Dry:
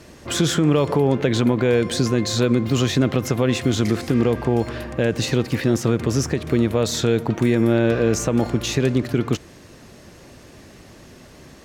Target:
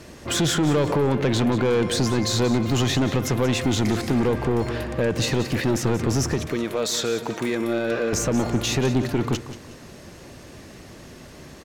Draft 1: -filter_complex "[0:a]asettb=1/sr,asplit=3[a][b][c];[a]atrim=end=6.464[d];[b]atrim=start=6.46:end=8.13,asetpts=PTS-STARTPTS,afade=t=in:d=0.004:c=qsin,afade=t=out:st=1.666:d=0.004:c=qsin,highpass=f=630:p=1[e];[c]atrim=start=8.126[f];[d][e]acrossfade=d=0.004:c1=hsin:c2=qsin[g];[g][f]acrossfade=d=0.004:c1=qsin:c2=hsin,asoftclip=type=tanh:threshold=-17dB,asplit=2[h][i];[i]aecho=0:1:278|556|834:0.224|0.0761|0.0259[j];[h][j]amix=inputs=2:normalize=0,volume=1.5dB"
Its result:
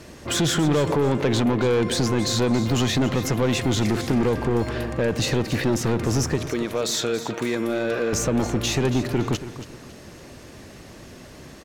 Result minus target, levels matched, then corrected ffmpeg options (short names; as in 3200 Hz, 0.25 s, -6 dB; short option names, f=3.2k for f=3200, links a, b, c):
echo 96 ms late
-filter_complex "[0:a]asettb=1/sr,asplit=3[a][b][c];[a]atrim=end=6.464[d];[b]atrim=start=6.46:end=8.13,asetpts=PTS-STARTPTS,afade=t=in:d=0.004:c=qsin,afade=t=out:st=1.666:d=0.004:c=qsin,highpass=f=630:p=1[e];[c]atrim=start=8.126[f];[d][e]acrossfade=d=0.004:c1=hsin:c2=qsin[g];[g][f]acrossfade=d=0.004:c1=qsin:c2=hsin,asoftclip=type=tanh:threshold=-17dB,asplit=2[h][i];[i]aecho=0:1:182|364|546:0.224|0.0761|0.0259[j];[h][j]amix=inputs=2:normalize=0,volume=1.5dB"